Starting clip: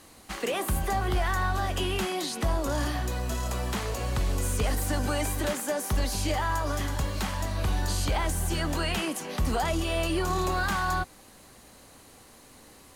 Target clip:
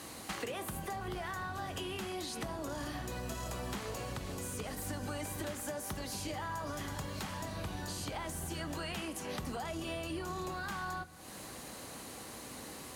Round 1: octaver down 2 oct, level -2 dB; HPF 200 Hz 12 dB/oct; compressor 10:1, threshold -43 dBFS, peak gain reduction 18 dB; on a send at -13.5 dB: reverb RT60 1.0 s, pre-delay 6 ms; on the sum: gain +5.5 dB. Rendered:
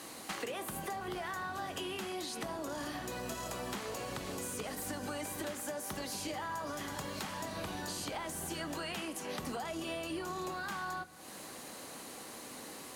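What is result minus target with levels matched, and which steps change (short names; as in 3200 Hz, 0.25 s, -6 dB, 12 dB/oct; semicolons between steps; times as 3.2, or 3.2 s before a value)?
125 Hz band -6.0 dB
change: HPF 100 Hz 12 dB/oct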